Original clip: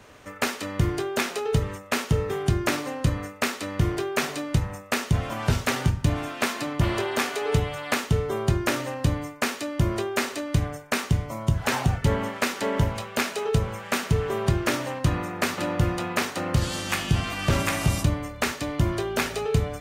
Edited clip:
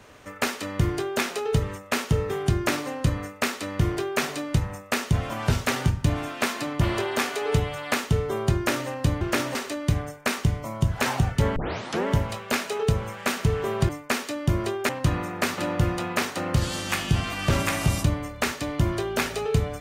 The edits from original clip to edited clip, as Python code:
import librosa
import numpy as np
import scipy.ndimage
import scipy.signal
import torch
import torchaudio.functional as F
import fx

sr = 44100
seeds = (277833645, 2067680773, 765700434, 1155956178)

y = fx.edit(x, sr, fx.swap(start_s=9.21, length_s=1.0, other_s=14.55, other_length_s=0.34),
    fx.tape_start(start_s=12.22, length_s=0.51), tone=tone)